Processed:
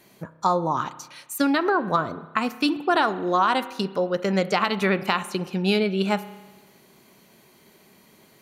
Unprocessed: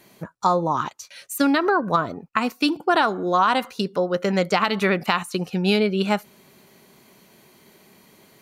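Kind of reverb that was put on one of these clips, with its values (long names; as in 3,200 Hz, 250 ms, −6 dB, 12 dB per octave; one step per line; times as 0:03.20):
spring reverb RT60 1.2 s, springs 31 ms, chirp 35 ms, DRR 14 dB
level −2 dB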